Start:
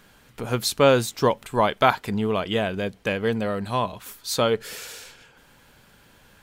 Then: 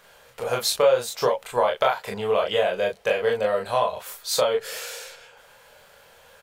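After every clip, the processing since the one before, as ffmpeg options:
-af "lowshelf=f=390:t=q:w=3:g=-9.5,acompressor=threshold=-19dB:ratio=6,aecho=1:1:25|38:0.631|0.631"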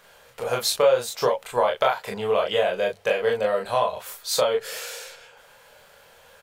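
-af "bandreject=f=50:t=h:w=6,bandreject=f=100:t=h:w=6"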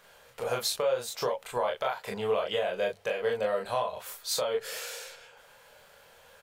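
-af "alimiter=limit=-14.5dB:level=0:latency=1:release=217,volume=-4dB"

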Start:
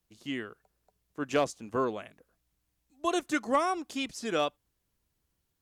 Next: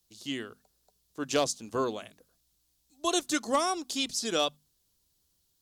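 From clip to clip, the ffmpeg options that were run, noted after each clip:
-af "highshelf=f=3k:t=q:w=1.5:g=9,bandreject=f=50:t=h:w=6,bandreject=f=100:t=h:w=6,bandreject=f=150:t=h:w=6,bandreject=f=200:t=h:w=6,bandreject=f=250:t=h:w=6"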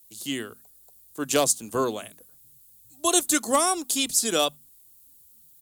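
-filter_complex "[0:a]acrossover=split=120|1200[a][b][c];[a]aecho=1:1:1106:0.0944[d];[c]aexciter=amount=4.1:drive=6.8:freq=7.6k[e];[d][b][e]amix=inputs=3:normalize=0,volume=4.5dB"

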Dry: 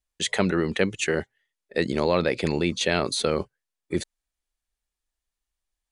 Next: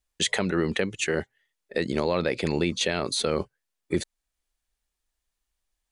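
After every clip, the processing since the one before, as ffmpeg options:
-af "alimiter=limit=-16dB:level=0:latency=1:release=450,volume=3.5dB"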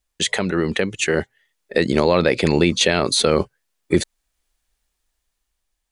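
-af "dynaudnorm=f=320:g=7:m=5dB,volume=4dB"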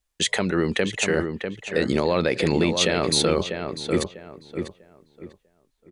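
-filter_complex "[0:a]alimiter=limit=-7.5dB:level=0:latency=1:release=136,asplit=2[a][b];[b]adelay=646,lowpass=f=2.2k:p=1,volume=-6dB,asplit=2[c][d];[d]adelay=646,lowpass=f=2.2k:p=1,volume=0.28,asplit=2[e][f];[f]adelay=646,lowpass=f=2.2k:p=1,volume=0.28,asplit=2[g][h];[h]adelay=646,lowpass=f=2.2k:p=1,volume=0.28[i];[a][c][e][g][i]amix=inputs=5:normalize=0,volume=-2dB"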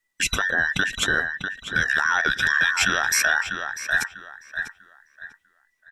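-af "afftfilt=real='real(if(between(b,1,1012),(2*floor((b-1)/92)+1)*92-b,b),0)':imag='imag(if(between(b,1,1012),(2*floor((b-1)/92)+1)*92-b,b),0)*if(between(b,1,1012),-1,1)':win_size=2048:overlap=0.75"

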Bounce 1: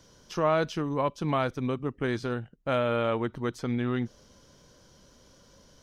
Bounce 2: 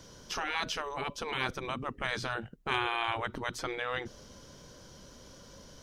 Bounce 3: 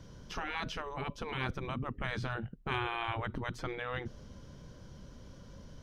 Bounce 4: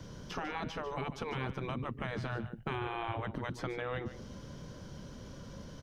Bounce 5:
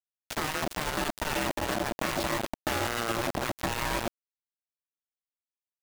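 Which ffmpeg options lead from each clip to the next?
-af "afftfilt=real='re*lt(hypot(re,im),0.1)':imag='im*lt(hypot(re,im),0.1)':win_size=1024:overlap=0.75,volume=5dB"
-af "bass=f=250:g=10,treble=f=4k:g=-8,volume=-4dB"
-filter_complex "[0:a]acrossover=split=92|800|1700[a][b][c][d];[a]acompressor=threshold=-59dB:ratio=4[e];[b]acompressor=threshold=-42dB:ratio=4[f];[c]acompressor=threshold=-52dB:ratio=4[g];[d]acompressor=threshold=-53dB:ratio=4[h];[e][f][g][h]amix=inputs=4:normalize=0,aecho=1:1:147:0.237,volume=5.5dB"
-af "acrusher=bits=5:mix=0:aa=0.000001,aeval=exprs='val(0)*sin(2*PI*460*n/s)':c=same,volume=9dB"

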